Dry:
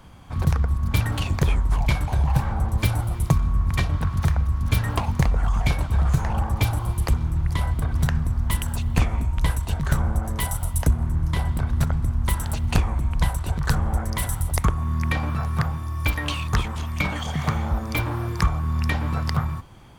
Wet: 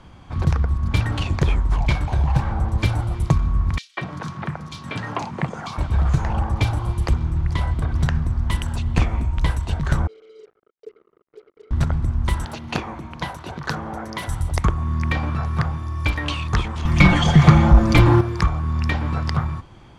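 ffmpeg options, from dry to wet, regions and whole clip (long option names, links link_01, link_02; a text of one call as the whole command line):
ffmpeg -i in.wav -filter_complex "[0:a]asettb=1/sr,asplit=3[link_01][link_02][link_03];[link_01]atrim=end=3.784[link_04];[link_02]atrim=start=3.78:end=5.78,asetpts=PTS-STARTPTS,afade=type=in:duration=0.004:curve=qsin,afade=type=out:start_time=1.996:duration=0.004:curve=qsin,highpass=frequency=150:width=0.5412,highpass=frequency=150:width=1.3066,acrossover=split=7500[link_05][link_06];[link_06]acompressor=threshold=-48dB:ratio=4:attack=1:release=60[link_07];[link_05][link_07]amix=inputs=2:normalize=0,acrossover=split=310|3300[link_08][link_09][link_10];[link_09]adelay=190[link_11];[link_08]adelay=230[link_12];[link_12][link_11][link_10]amix=inputs=3:normalize=0,atrim=end_sample=88200[link_13];[link_03]atrim=start=5.776[link_14];[link_04][link_13]acrossfade=duration=0.004:curve1=hsin:curve2=qsin[link_15];[link_15][link_14]acrossfade=duration=0.004:curve1=qsin:curve2=hsin,asettb=1/sr,asplit=3[link_16][link_17][link_18];[link_16]atrim=end=10.074[link_19];[link_17]atrim=start=10.07:end=11.71,asetpts=PTS-STARTPTS,afade=type=in:duration=0.004:curve=qsin,afade=type=out:start_time=1.636:duration=0.004:curve=qsin,asuperpass=centerf=430:order=4:qfactor=7.2,acrusher=bits=8:mix=0:aa=0.5[link_20];[link_18]atrim=start=11.706[link_21];[link_19][link_20]acrossfade=duration=0.004:curve1=hsin:curve2=qsin[link_22];[link_22][link_21]acrossfade=duration=0.004:curve1=qsin:curve2=hsin,asettb=1/sr,asplit=3[link_23][link_24][link_25];[link_23]atrim=end=12.454[link_26];[link_24]atrim=start=12.45:end=14.28,asetpts=PTS-STARTPTS,afade=type=in:duration=0.004:curve=qsin,afade=type=out:start_time=1.826:duration=0.004:curve=qsin,highpass=200,equalizer=frequency=8200:width_type=o:width=0.3:gain=-10.5[link_27];[link_25]atrim=start=14.276[link_28];[link_26][link_27]acrossfade=duration=0.004:curve1=hsin:curve2=qsin[link_29];[link_29][link_28]acrossfade=duration=0.004:curve1=qsin:curve2=hsin,asettb=1/sr,asplit=3[link_30][link_31][link_32];[link_30]atrim=end=16.854[link_33];[link_31]atrim=start=16.85:end=18.21,asetpts=PTS-STARTPTS,afade=type=in:duration=0.004:curve=qsin,afade=type=out:start_time=1.356:duration=0.004:curve=qsin,lowshelf=frequency=160:gain=9,aecho=1:1:5.8:0.71,atrim=end_sample=59976,acontrast=82[link_34];[link_32]atrim=start=18.206[link_35];[link_33][link_34]acrossfade=duration=0.004:curve1=hsin:curve2=qsin[link_36];[link_36][link_35]acrossfade=duration=0.004:curve1=qsin:curve2=hsin,lowpass=6200,equalizer=frequency=340:width=4.9:gain=4,volume=1.5dB" out.wav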